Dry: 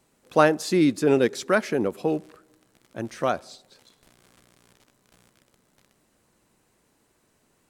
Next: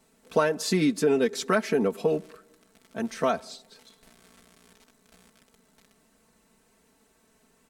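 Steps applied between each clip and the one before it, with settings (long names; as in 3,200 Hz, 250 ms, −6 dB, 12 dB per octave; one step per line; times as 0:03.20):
comb filter 4.5 ms, depth 81%
downward compressor 6 to 1, threshold −19 dBFS, peak gain reduction 9 dB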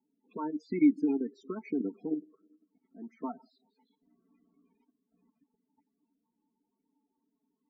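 output level in coarse steps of 12 dB
spectral peaks only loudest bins 16
formant filter u
level +6.5 dB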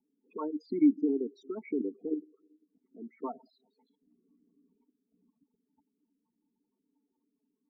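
spectral envelope exaggerated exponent 2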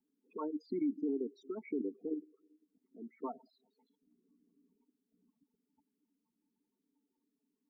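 brickwall limiter −24 dBFS, peak gain reduction 9 dB
level −3.5 dB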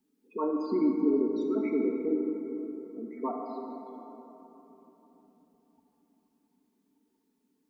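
dense smooth reverb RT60 3.8 s, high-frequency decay 0.4×, pre-delay 0 ms, DRR 0 dB
level +7.5 dB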